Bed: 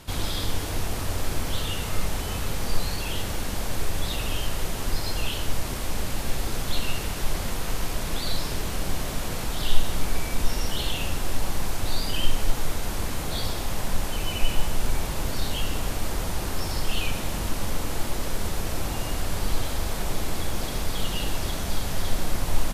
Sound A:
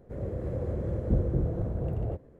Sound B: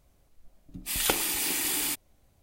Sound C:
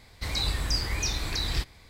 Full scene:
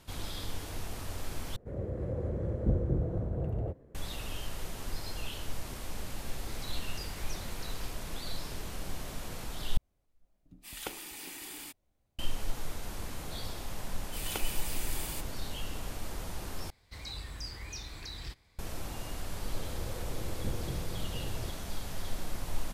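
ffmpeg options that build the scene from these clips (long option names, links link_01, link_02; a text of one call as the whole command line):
ffmpeg -i bed.wav -i cue0.wav -i cue1.wav -i cue2.wav -filter_complex "[1:a]asplit=2[link_01][link_02];[3:a]asplit=2[link_03][link_04];[2:a]asplit=2[link_05][link_06];[0:a]volume=-11dB[link_07];[link_05]highshelf=frequency=3900:gain=-4.5[link_08];[link_04]asoftclip=type=tanh:threshold=-15.5dB[link_09];[link_07]asplit=4[link_10][link_11][link_12][link_13];[link_10]atrim=end=1.564[link_14];[link_01]atrim=end=2.39,asetpts=PTS-STARTPTS,volume=-2.5dB[link_15];[link_11]atrim=start=3.946:end=9.774[link_16];[link_08]atrim=end=2.42,asetpts=PTS-STARTPTS,volume=-12.5dB[link_17];[link_12]atrim=start=12.186:end=16.704[link_18];[link_09]atrim=end=1.89,asetpts=PTS-STARTPTS,volume=-13dB[link_19];[link_13]atrim=start=18.586[link_20];[link_03]atrim=end=1.89,asetpts=PTS-STARTPTS,volume=-17.5dB,afade=type=in:duration=0.004:curve=hsin,afade=type=out:start_time=1.886:duration=0.004:curve=hsin,adelay=6270[link_21];[link_06]atrim=end=2.42,asetpts=PTS-STARTPTS,volume=-12dB,afade=type=in:duration=0.004:curve=hsin,afade=type=out:start_time=2.416:duration=0.004:curve=hsin,adelay=13260[link_22];[link_02]atrim=end=2.39,asetpts=PTS-STARTPTS,volume=-11dB,afade=type=in:duration=0.004:curve=hsin,afade=type=out:start_time=2.386:duration=0.004:curve=hsin,adelay=19340[link_23];[link_14][link_15]acrossfade=duration=0.004:curve1=hsin:curve2=hsin[link_24];[link_24][link_16]acrossfade=duration=0.004:curve1=hsin:curve2=hsin[link_25];[link_25][link_17]acrossfade=duration=0.004:curve1=hsin:curve2=hsin[link_26];[link_26][link_18]acrossfade=duration=0.004:curve1=hsin:curve2=hsin[link_27];[link_27][link_19]acrossfade=duration=0.004:curve1=hsin:curve2=hsin[link_28];[link_28][link_20]acrossfade=duration=0.004:curve1=hsin:curve2=hsin[link_29];[link_29][link_21][link_22][link_23]amix=inputs=4:normalize=0" out.wav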